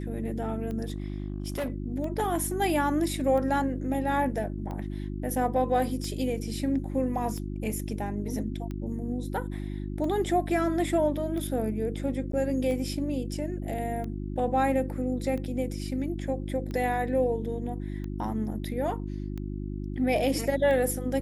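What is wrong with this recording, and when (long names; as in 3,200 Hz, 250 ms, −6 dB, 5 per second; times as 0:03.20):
mains hum 50 Hz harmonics 7 −34 dBFS
scratch tick 45 rpm −25 dBFS
0:00.88–0:01.70: clipping −27 dBFS
0:12.32–0:12.33: drop-out 13 ms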